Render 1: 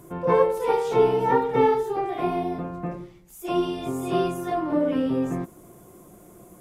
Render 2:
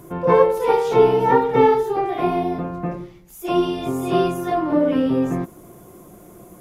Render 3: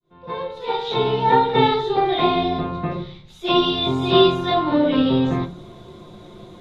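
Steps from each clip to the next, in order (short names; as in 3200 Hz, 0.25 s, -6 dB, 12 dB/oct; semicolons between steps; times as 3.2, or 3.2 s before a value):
bell 8200 Hz -5.5 dB 0.35 oct; gain +5 dB
opening faded in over 1.95 s; synth low-pass 3800 Hz, resonance Q 13; on a send at -2.5 dB: reverb RT60 0.30 s, pre-delay 5 ms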